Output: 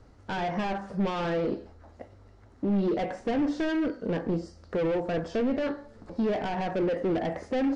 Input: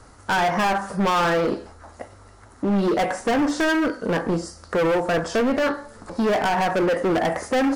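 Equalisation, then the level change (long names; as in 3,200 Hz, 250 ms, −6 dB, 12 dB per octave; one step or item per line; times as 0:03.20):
head-to-tape spacing loss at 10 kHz 33 dB
low-shelf EQ 480 Hz −8.5 dB
parametric band 1,200 Hz −14.5 dB 2 octaves
+4.5 dB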